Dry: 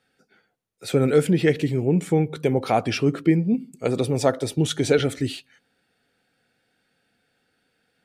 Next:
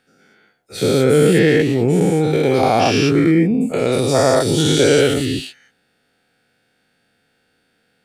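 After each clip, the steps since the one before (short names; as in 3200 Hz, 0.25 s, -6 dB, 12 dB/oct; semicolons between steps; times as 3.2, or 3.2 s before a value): spectral dilation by 0.24 s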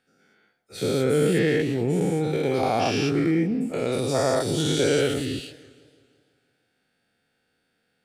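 warbling echo 0.167 s, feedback 58%, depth 187 cents, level -20.5 dB; gain -8.5 dB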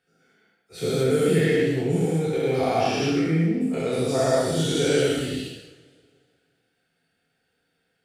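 non-linear reverb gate 0.29 s falling, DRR -2.5 dB; gain -4.5 dB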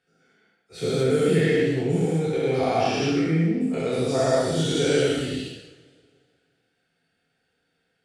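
LPF 9000 Hz 12 dB/oct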